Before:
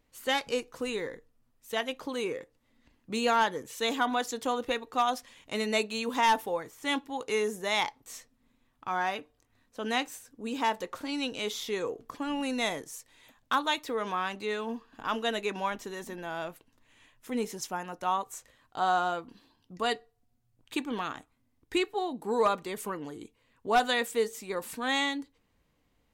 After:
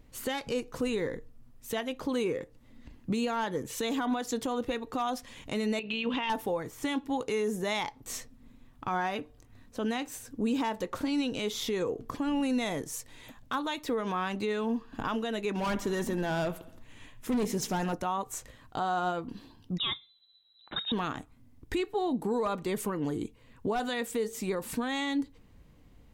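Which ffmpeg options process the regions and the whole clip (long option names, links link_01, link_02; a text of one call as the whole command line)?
ffmpeg -i in.wav -filter_complex "[0:a]asettb=1/sr,asplit=3[link_01][link_02][link_03];[link_01]atrim=end=5.794[link_04];[link_02]atrim=start=5.79:end=6.3,asetpts=PTS-STARTPTS,afade=type=in:duration=0.004:curve=qsin,afade=type=out:start_time=0.506:duration=0.004:curve=qsin,tremolo=f=60:d=0.261,lowpass=frequency=2900:width_type=q:width=5.3,acompressor=threshold=-30dB:ratio=12:attack=3.2:release=140:knee=1:detection=peak[link_05];[link_03]atrim=start=6.296[link_06];[link_04][link_05]acrossfade=duration=0.004:curve1=hsin:curve2=qsin[link_07];[link_07][link_06]acrossfade=duration=0.004:curve1=qsin:curve2=hsin,asettb=1/sr,asplit=3[link_08][link_09][link_10];[link_08]atrim=end=15.544[link_11];[link_09]atrim=start=15.54:end=17.94,asetpts=PTS-STARTPTS,afade=type=in:duration=0.004:curve=qsin,afade=type=out:start_time=2.396:duration=0.004:curve=qsin,aecho=1:1:68|136|204|272|340:0.112|0.0617|0.0339|0.0187|0.0103,atrim=end_sample=105840,asoftclip=type=hard:threshold=-34dB[link_12];[link_10]atrim=start=17.936[link_13];[link_11][link_12]acrossfade=duration=0.004:curve1=hsin:curve2=qsin[link_14];[link_14][link_13]acrossfade=duration=0.004:curve1=qsin:curve2=hsin,asettb=1/sr,asplit=3[link_15][link_16][link_17];[link_15]atrim=end=19.784[link_18];[link_16]atrim=start=19.78:end=20.92,asetpts=PTS-STARTPTS,afade=type=in:duration=0.004:curve=qsin,afade=type=out:start_time=1.136:duration=0.004:curve=qsin,equalizer=frequency=1400:width_type=o:width=0.88:gain=-6,lowpass=frequency=3400:width_type=q:width=0.5098,lowpass=frequency=3400:width_type=q:width=0.6013,lowpass=frequency=3400:width_type=q:width=0.9,lowpass=frequency=3400:width_type=q:width=2.563,afreqshift=-4000[link_19];[link_17]atrim=start=20.916[link_20];[link_18][link_19]acrossfade=duration=0.004:curve1=hsin:curve2=qsin[link_21];[link_21][link_20]acrossfade=duration=0.004:curve1=qsin:curve2=hsin,lowshelf=frequency=330:gain=11.5,alimiter=level_in=4dB:limit=-24dB:level=0:latency=1:release=276,volume=-4dB,volume=6dB" out.wav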